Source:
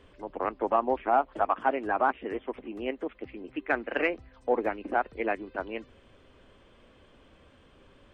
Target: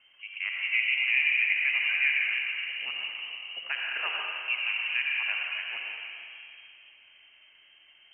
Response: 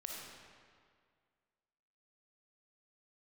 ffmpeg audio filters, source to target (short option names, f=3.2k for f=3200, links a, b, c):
-filter_complex "[0:a]equalizer=f=100:t=o:w=0.67:g=12,equalizer=f=400:t=o:w=0.67:g=3,equalizer=f=1k:t=o:w=0.67:g=10[a];[1:a]atrim=start_sample=2205,asetrate=28224,aresample=44100[b];[a][b]afir=irnorm=-1:irlink=0,lowpass=f=2.7k:t=q:w=0.5098,lowpass=f=2.7k:t=q:w=0.6013,lowpass=f=2.7k:t=q:w=0.9,lowpass=f=2.7k:t=q:w=2.563,afreqshift=-3200,volume=-6.5dB"